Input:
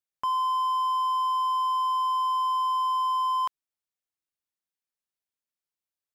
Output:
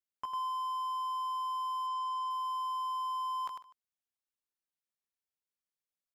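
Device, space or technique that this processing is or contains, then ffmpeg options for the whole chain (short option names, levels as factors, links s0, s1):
slapback doubling: -filter_complex "[0:a]asplit=3[s0][s1][s2];[s1]adelay=17,volume=0.562[s3];[s2]adelay=100,volume=0.501[s4];[s0][s3][s4]amix=inputs=3:normalize=0,asplit=3[s5][s6][s7];[s5]afade=t=out:st=1.86:d=0.02[s8];[s6]lowpass=9000,afade=t=in:st=1.86:d=0.02,afade=t=out:st=2.29:d=0.02[s9];[s7]afade=t=in:st=2.29:d=0.02[s10];[s8][s9][s10]amix=inputs=3:normalize=0,aecho=1:1:149:0.119,volume=0.398"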